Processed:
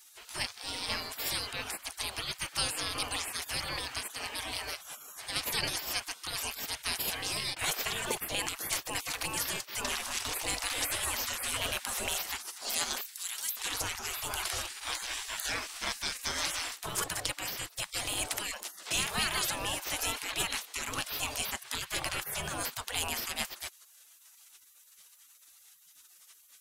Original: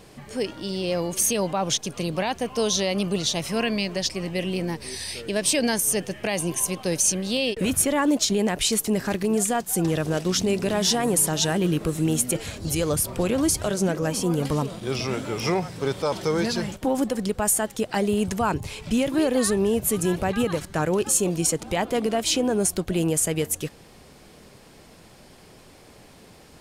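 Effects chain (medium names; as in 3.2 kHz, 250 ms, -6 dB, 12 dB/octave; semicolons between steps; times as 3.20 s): spectral gate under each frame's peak -25 dB weak; 13.01–13.57 s: differentiator; trim +6.5 dB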